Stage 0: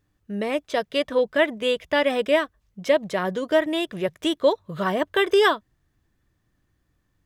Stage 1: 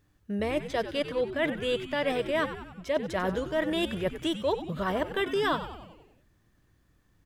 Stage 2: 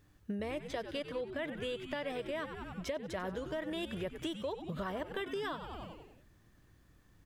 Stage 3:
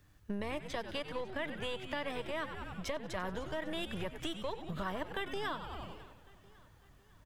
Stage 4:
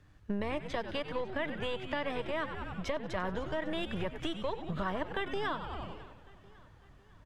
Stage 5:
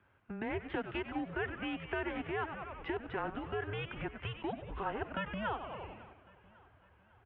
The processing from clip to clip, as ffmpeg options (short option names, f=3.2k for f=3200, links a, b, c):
-filter_complex "[0:a]areverse,acompressor=threshold=-29dB:ratio=6,areverse,asplit=8[a][b][c][d][e][f][g][h];[b]adelay=94,afreqshift=-120,volume=-11dB[i];[c]adelay=188,afreqshift=-240,volume=-15.7dB[j];[d]adelay=282,afreqshift=-360,volume=-20.5dB[k];[e]adelay=376,afreqshift=-480,volume=-25.2dB[l];[f]adelay=470,afreqshift=-600,volume=-29.9dB[m];[g]adelay=564,afreqshift=-720,volume=-34.7dB[n];[h]adelay=658,afreqshift=-840,volume=-39.4dB[o];[a][i][j][k][l][m][n][o]amix=inputs=8:normalize=0,volume=3dB"
-af "acompressor=threshold=-37dB:ratio=12,volume=2dB"
-filter_complex "[0:a]acrossover=split=170|720|5000[a][b][c][d];[b]aeval=exprs='max(val(0),0)':c=same[e];[a][e][c][d]amix=inputs=4:normalize=0,aecho=1:1:551|1102|1653|2204:0.0891|0.0455|0.0232|0.0118,volume=2dB"
-af "aemphasis=mode=reproduction:type=50fm,volume=3.5dB"
-af "asubboost=boost=8.5:cutoff=120,highpass=f=180:t=q:w=0.5412,highpass=f=180:t=q:w=1.307,lowpass=f=3.1k:t=q:w=0.5176,lowpass=f=3.1k:t=q:w=0.7071,lowpass=f=3.1k:t=q:w=1.932,afreqshift=-210,highpass=68"